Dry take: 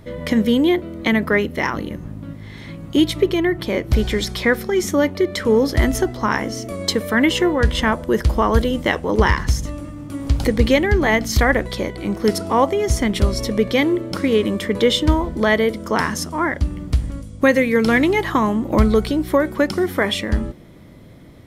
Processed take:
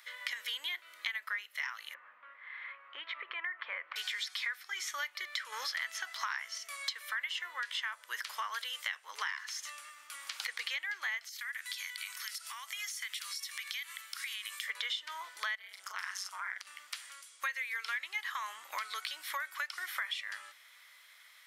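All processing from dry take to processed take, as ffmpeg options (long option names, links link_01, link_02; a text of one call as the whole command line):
ffmpeg -i in.wav -filter_complex "[0:a]asettb=1/sr,asplit=3[link_01][link_02][link_03];[link_01]atrim=end=1.944[link_04];[link_02]atrim=start=1.94:end=3.96,asetpts=PTS-STARTPTS,afade=type=in:duration=0.004:curve=qsin,afade=type=out:start_time=2.016:duration=0.004:curve=qsin,acompressor=threshold=-17dB:ratio=5:attack=3.2:release=140:knee=1:detection=peak,highpass=130,equalizer=frequency=150:width_type=q:width=4:gain=7,equalizer=frequency=220:width_type=q:width=4:gain=10,equalizer=frequency=520:width_type=q:width=4:gain=10,equalizer=frequency=1100:width_type=q:width=4:gain=6,lowpass=frequency=2200:width=0.5412,lowpass=frequency=2200:width=1.3066[link_05];[link_03]atrim=start=3.956[link_06];[link_04][link_05]acrossfade=duration=0.004:curve1=hsin:curve2=qsin[link_07];[link_07][link_06]acrossfade=duration=0.004:curve1=qsin:curve2=hsin,asettb=1/sr,asplit=3[link_08][link_09][link_10];[link_08]atrim=end=5.524[link_11];[link_09]atrim=start=5.52:end=6.58,asetpts=PTS-STARTPTS,afade=type=in:duration=0.004:curve=qsin,afade=type=out:start_time=1.056:duration=0.004:curve=qsin,equalizer=frequency=390:width_type=o:width=0.61:gain=-5.5,acontrast=52[link_12];[link_10]atrim=start=6.576[link_13];[link_11][link_12]acrossfade=duration=0.004:curve1=hsin:curve2=qsin[link_14];[link_14][link_13]acrossfade=duration=0.004:curve1=qsin:curve2=hsin,asettb=1/sr,asplit=3[link_15][link_16][link_17];[link_15]atrim=end=11.294[link_18];[link_16]atrim=start=11.29:end=14.68,asetpts=PTS-STARTPTS,afade=type=in:duration=0.004:curve=qsin,afade=type=out:start_time=3.386:duration=0.004:curve=qsin,highpass=1400,highshelf=frequency=7100:gain=12,acompressor=threshold=-34dB:ratio=5:attack=3.2:release=140:knee=1:detection=peak[link_19];[link_17]atrim=start=14.676[link_20];[link_18][link_19]acrossfade=duration=0.004:curve1=hsin:curve2=qsin[link_21];[link_21][link_20]acrossfade=duration=0.004:curve1=qsin:curve2=hsin,asettb=1/sr,asplit=3[link_22][link_23][link_24];[link_22]atrim=end=15.554[link_25];[link_23]atrim=start=15.55:end=16.67,asetpts=PTS-STARTPTS,afade=type=in:duration=0.004:curve=qsin,afade=type=out:start_time=1.116:duration=0.004:curve=qsin,asplit=2[link_26][link_27];[link_27]adelay=39,volume=-8dB[link_28];[link_26][link_28]amix=inputs=2:normalize=0,atrim=end_sample=49392,acompressor=threshold=-23dB:ratio=4:attack=3.2:release=140:knee=1:detection=peak,tremolo=f=190:d=0.889[link_29];[link_24]atrim=start=16.666[link_30];[link_25][link_29]acrossfade=duration=0.004:curve1=hsin:curve2=qsin[link_31];[link_31][link_30]acrossfade=duration=0.004:curve1=qsin:curve2=hsin,acrossover=split=5200[link_32][link_33];[link_33]acompressor=threshold=-41dB:ratio=4:attack=1:release=60[link_34];[link_32][link_34]amix=inputs=2:normalize=0,highpass=frequency=1400:width=0.5412,highpass=frequency=1400:width=1.3066,acompressor=threshold=-35dB:ratio=6" out.wav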